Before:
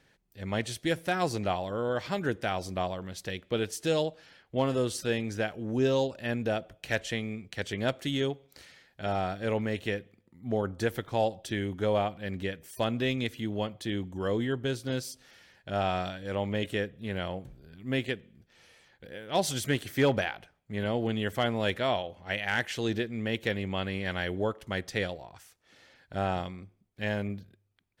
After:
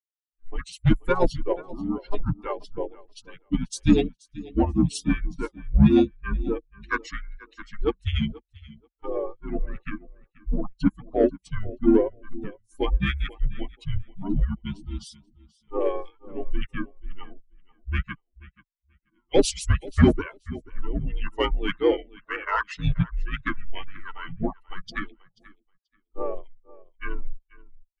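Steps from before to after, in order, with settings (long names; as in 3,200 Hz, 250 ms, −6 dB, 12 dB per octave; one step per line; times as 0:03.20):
spectral dynamics exaggerated over time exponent 3
tilt shelving filter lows +5 dB, about 730 Hz
on a send: repeating echo 483 ms, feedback 15%, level −21 dB
on the sum: automatic gain control gain up to 13 dB
brick-wall band-pass 150–11,000 Hz
in parallel at −4 dB: soft clipping −16 dBFS, distortion −11 dB
on the sum: frequency shifter −190 Hz
pitch-shifted copies added −7 semitones −7 dB, −5 semitones −6 dB
level −4 dB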